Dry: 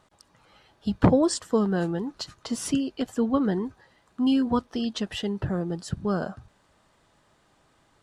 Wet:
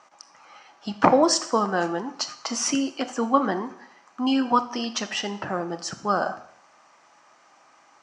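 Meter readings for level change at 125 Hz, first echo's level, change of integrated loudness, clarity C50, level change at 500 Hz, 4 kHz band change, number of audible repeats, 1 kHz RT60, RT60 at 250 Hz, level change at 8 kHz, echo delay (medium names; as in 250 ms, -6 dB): -8.5 dB, no echo, +2.0 dB, 13.5 dB, +2.5 dB, +6.5 dB, no echo, 0.65 s, 0.65 s, +8.0 dB, no echo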